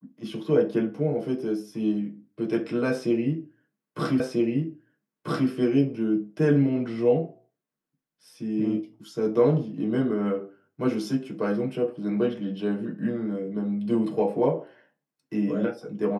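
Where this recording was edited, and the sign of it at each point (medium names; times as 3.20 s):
4.20 s: repeat of the last 1.29 s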